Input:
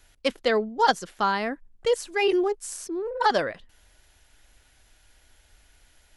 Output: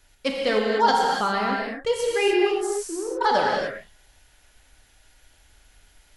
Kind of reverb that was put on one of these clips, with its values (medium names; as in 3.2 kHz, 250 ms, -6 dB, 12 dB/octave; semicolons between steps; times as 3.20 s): gated-style reverb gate 320 ms flat, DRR -2 dB; trim -1.5 dB